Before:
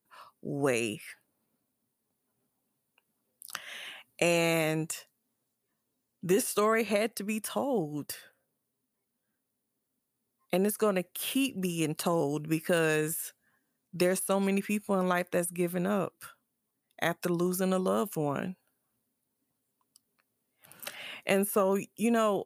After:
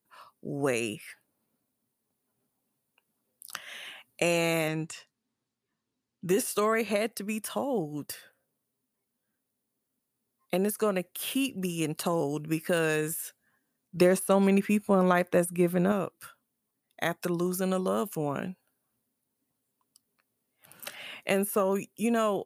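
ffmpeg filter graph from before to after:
-filter_complex "[0:a]asettb=1/sr,asplit=3[a][b][c];[a]atrim=end=4.684[d];[b]atrim=start=4.68:end=6.29,asetpts=PTS-STARTPTS,afade=t=in:d=0.004:c=qsin,afade=t=out:st=1.606:d=0.004:c=qsin,lowpass=6k,equalizer=f=580:w=1.8:g=-6[e];[c]atrim=start=6.286[f];[d][e]acrossfade=d=0.004:c1=hsin:c2=qsin[g];[g][f]acrossfade=d=0.004:c1=qsin:c2=hsin,asettb=1/sr,asplit=3[h][i][j];[h]atrim=end=13.974[k];[i]atrim=start=13.97:end=15.92,asetpts=PTS-STARTPTS,afade=t=in:d=0.004:c=qsin,afade=t=out:st=1.946:d=0.004:c=qsin,highshelf=f=2.1k:g=-6.5,acontrast=39[l];[j]atrim=start=15.916[m];[k][l]acrossfade=d=0.004:c1=hsin:c2=qsin[n];[n][m]acrossfade=d=0.004:c1=qsin:c2=hsin"

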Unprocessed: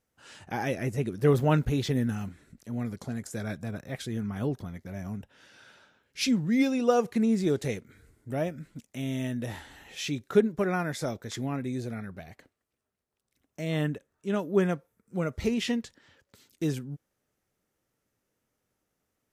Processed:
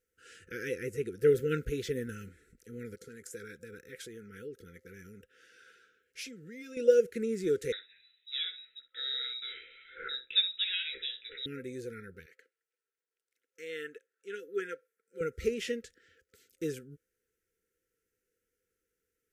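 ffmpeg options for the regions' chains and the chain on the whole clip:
-filter_complex "[0:a]asettb=1/sr,asplit=3[a][b][c];[a]atrim=end=2.954[d];[b]atrim=start=2.95:end=6.77,asetpts=PTS-STARTPTS,afade=t=in:d=0.004:c=qsin,afade=t=out:st=3.816:d=0.004:c=qsin,acompressor=threshold=-32dB:ratio=6:attack=3.2:release=140:knee=1:detection=peak,lowshelf=f=140:g=-10[e];[c]atrim=start=6.766[f];[d][e]acrossfade=d=0.004:c1=hsin:c2=qsin[g];[g][f]acrossfade=d=0.004:c1=qsin:c2=hsin,asettb=1/sr,asplit=3[h][i][j];[h]atrim=end=7.724[k];[i]atrim=start=7.72:end=11.46,asetpts=PTS-STARTPTS,afade=t=in:d=0.004:c=qsin,afade=t=out:st=3.736:d=0.004:c=qsin,asplit=2[l][m];[m]adelay=15,volume=-6.5dB[n];[l][n]amix=inputs=2:normalize=0,atrim=end_sample=164934,lowpass=f=3.4k:t=q:w=0.5098,lowpass=f=3.4k:t=q:w=0.6013,lowpass=f=3.4k:t=q:w=0.9,lowpass=f=3.4k:t=q:w=2.563,afreqshift=-4000,asplit=2[o][p];[p]adelay=61,lowpass=f=1.5k:p=1,volume=-7dB,asplit=2[q][r];[r]adelay=61,lowpass=f=1.5k:p=1,volume=0.18,asplit=2[s][t];[t]adelay=61,lowpass=f=1.5k:p=1,volume=0.18[u];[o][q][s][u]amix=inputs=4:normalize=0,atrim=end_sample=164934[v];[j]atrim=start=11.456[w];[k][v]acrossfade=d=0.004:c1=hsin:c2=qsin[x];[x][w]acrossfade=d=0.004:c1=qsin:c2=hsin,asettb=1/sr,asplit=3[y][z][aa];[y]atrim=end=12.264[ab];[z]atrim=start=12.26:end=15.21,asetpts=PTS-STARTPTS,afade=t=in:d=0.004:c=qsin,afade=t=out:st=2.946:d=0.004:c=qsin,highpass=580,highshelf=f=7.9k:g=-8[ac];[aa]atrim=start=15.206[ad];[ab][ac]acrossfade=d=0.004:c1=hsin:c2=qsin[ae];[ae][ad]acrossfade=d=0.004:c1=qsin:c2=hsin,afftfilt=real='re*(1-between(b*sr/4096,520,1300))':imag='im*(1-between(b*sr/4096,520,1300))':win_size=4096:overlap=0.75,equalizer=f=125:t=o:w=1:g=-10,equalizer=f=250:t=o:w=1:g=-9,equalizer=f=500:t=o:w=1:g=7,equalizer=f=4k:t=o:w=1:g=-6,volume=-2.5dB"

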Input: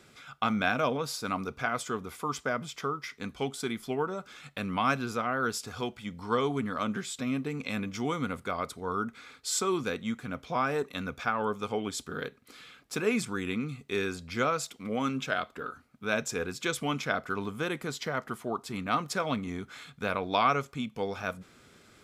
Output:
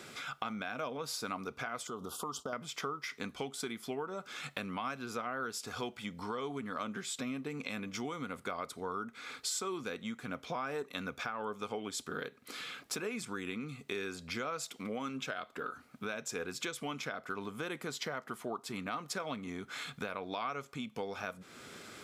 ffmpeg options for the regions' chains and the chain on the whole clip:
-filter_complex "[0:a]asettb=1/sr,asplit=3[a][b][c];[a]atrim=end=1.874[d];[b]atrim=start=1.87:end=2.53,asetpts=PTS-STARTPTS,afade=t=in:d=0.004:c=qsin,afade=t=out:st=0.656:d=0.004:c=qsin,agate=range=-33dB:threshold=-49dB:ratio=3:release=100:detection=peak,asuperstop=centerf=2000:order=8:qfactor=1.3,acompressor=threshold=-38dB:ratio=2.5:attack=3.2:release=140:knee=1:detection=peak[e];[c]atrim=start=2.526[f];[d][e]acrossfade=d=0.004:c1=hsin:c2=qsin[g];[g][f]acrossfade=d=0.004:c1=qsin:c2=hsin,alimiter=limit=-22.5dB:level=0:latency=1:release=489,acompressor=threshold=-47dB:ratio=3,highpass=f=220:p=1,volume=8.5dB"

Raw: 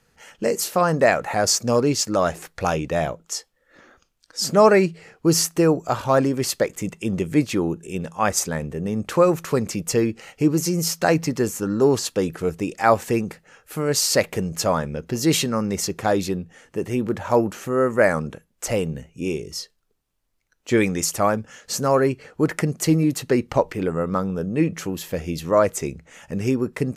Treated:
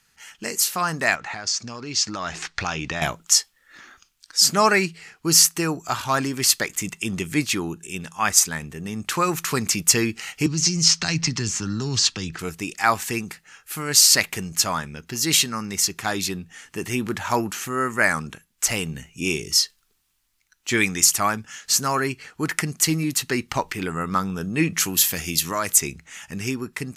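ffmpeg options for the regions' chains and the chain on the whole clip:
-filter_complex "[0:a]asettb=1/sr,asplit=3[a][b][c];[a]atrim=end=1.154[d];[b]atrim=start=1.15:end=3.02,asetpts=PTS-STARTPTS,afade=t=in:d=0.004:c=qsin,afade=t=out:st=1.866:d=0.004:c=qsin,lowpass=f=6.2k:w=0.5412,lowpass=f=6.2k:w=1.3066,acompressor=threshold=-26dB:ratio=5:attack=3.2:release=140:knee=1:detection=peak[e];[c]atrim=start=3.016[f];[d][e]acrossfade=d=0.004:c1=hsin:c2=qsin[g];[g][f]acrossfade=d=0.004:c1=qsin:c2=hsin,asettb=1/sr,asplit=3[h][i][j];[h]atrim=end=10.464[k];[i]atrim=start=10.46:end=12.39,asetpts=PTS-STARTPTS,afade=t=in:d=0.004:c=qsin,afade=t=out:st=1.926:d=0.004:c=qsin,lowpass=f=6.3k:w=0.5412,lowpass=f=6.3k:w=1.3066,lowshelf=f=150:g=7,acrossover=split=170|3000[l][m][n];[m]acompressor=threshold=-29dB:ratio=6:attack=3.2:release=140:knee=2.83:detection=peak[o];[l][o][n]amix=inputs=3:normalize=0[p];[j]atrim=start=12.386[q];[k][p]acrossfade=d=0.004:c1=hsin:c2=qsin[r];[r][q]acrossfade=d=0.004:c1=qsin:c2=hsin,asettb=1/sr,asplit=3[s][t][u];[s]atrim=end=24.804[v];[t]atrim=start=24.8:end=25.8,asetpts=PTS-STARTPTS,afade=t=in:d=0.004:c=qsin,afade=t=out:st=0.996:d=0.004:c=qsin,highpass=62,aemphasis=mode=production:type=cd,acompressor=threshold=-21dB:ratio=2:attack=3.2:release=140:knee=1:detection=peak[w];[u]atrim=start=25.796[x];[v][w]acrossfade=d=0.004:c1=hsin:c2=qsin[y];[y][x]acrossfade=d=0.004:c1=qsin:c2=hsin,tiltshelf=f=1.1k:g=-6.5,dynaudnorm=f=250:g=7:m=11.5dB,equalizer=f=530:t=o:w=0.58:g=-12.5,volume=-1dB"

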